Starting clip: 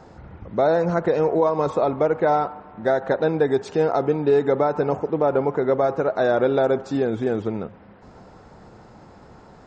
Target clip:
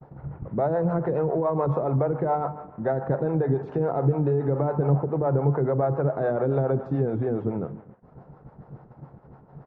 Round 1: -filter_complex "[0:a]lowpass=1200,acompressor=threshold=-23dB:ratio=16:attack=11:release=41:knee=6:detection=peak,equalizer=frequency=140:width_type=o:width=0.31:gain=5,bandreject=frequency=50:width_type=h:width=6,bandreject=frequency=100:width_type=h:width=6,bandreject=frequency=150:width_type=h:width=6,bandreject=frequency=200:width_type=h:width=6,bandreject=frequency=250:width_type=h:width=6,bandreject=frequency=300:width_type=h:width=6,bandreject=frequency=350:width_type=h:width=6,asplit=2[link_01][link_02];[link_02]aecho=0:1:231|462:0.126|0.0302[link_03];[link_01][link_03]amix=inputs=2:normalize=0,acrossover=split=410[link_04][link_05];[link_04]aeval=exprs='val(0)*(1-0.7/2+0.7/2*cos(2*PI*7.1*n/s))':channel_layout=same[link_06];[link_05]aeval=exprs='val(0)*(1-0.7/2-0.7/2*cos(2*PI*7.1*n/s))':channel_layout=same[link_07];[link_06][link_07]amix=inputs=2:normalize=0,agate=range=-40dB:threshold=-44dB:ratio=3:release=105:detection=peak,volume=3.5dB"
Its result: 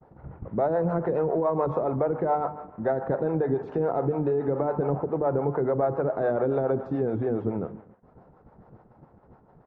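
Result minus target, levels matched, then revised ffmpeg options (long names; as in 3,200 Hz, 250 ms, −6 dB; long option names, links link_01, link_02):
125 Hz band −6.0 dB
-filter_complex "[0:a]lowpass=1200,acompressor=threshold=-23dB:ratio=16:attack=11:release=41:knee=6:detection=peak,equalizer=frequency=140:width_type=o:width=0.31:gain=15,bandreject=frequency=50:width_type=h:width=6,bandreject=frequency=100:width_type=h:width=6,bandreject=frequency=150:width_type=h:width=6,bandreject=frequency=200:width_type=h:width=6,bandreject=frequency=250:width_type=h:width=6,bandreject=frequency=300:width_type=h:width=6,bandreject=frequency=350:width_type=h:width=6,asplit=2[link_01][link_02];[link_02]aecho=0:1:231|462:0.126|0.0302[link_03];[link_01][link_03]amix=inputs=2:normalize=0,acrossover=split=410[link_04][link_05];[link_04]aeval=exprs='val(0)*(1-0.7/2+0.7/2*cos(2*PI*7.1*n/s))':channel_layout=same[link_06];[link_05]aeval=exprs='val(0)*(1-0.7/2-0.7/2*cos(2*PI*7.1*n/s))':channel_layout=same[link_07];[link_06][link_07]amix=inputs=2:normalize=0,agate=range=-40dB:threshold=-44dB:ratio=3:release=105:detection=peak,volume=3.5dB"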